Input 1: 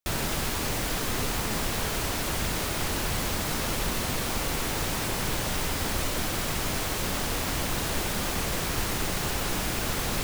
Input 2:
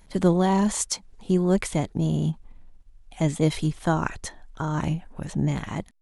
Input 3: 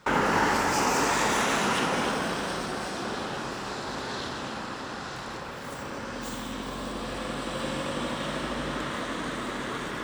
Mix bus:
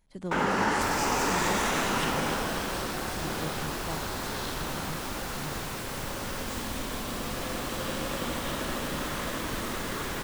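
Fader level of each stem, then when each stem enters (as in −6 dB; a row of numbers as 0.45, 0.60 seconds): −8.0, −16.0, −2.5 decibels; 0.75, 0.00, 0.25 seconds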